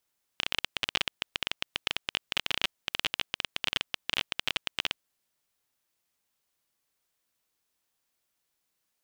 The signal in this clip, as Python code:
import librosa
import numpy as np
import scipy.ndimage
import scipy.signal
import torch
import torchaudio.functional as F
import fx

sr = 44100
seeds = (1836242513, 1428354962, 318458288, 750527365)

y = fx.geiger_clicks(sr, seeds[0], length_s=4.72, per_s=19.0, level_db=-9.5)